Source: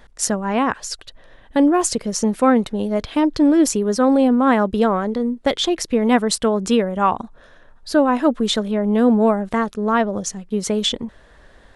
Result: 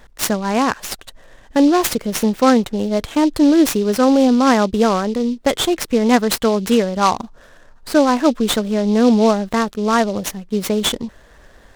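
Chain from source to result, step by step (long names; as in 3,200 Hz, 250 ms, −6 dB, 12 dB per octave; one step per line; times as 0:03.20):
short delay modulated by noise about 3,900 Hz, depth 0.03 ms
level +2 dB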